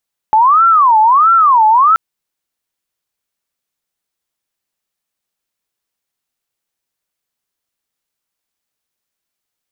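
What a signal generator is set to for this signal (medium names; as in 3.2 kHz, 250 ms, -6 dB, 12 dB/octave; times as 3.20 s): siren wail 861–1360 Hz 1.5 per s sine -5.5 dBFS 1.63 s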